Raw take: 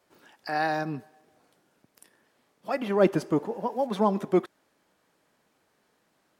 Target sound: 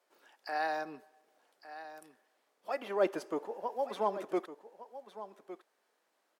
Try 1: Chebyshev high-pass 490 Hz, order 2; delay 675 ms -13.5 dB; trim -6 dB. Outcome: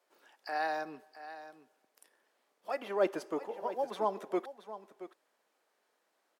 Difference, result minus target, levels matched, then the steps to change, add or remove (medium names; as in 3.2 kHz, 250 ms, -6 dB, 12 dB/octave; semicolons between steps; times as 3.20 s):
echo 484 ms early
change: delay 1159 ms -13.5 dB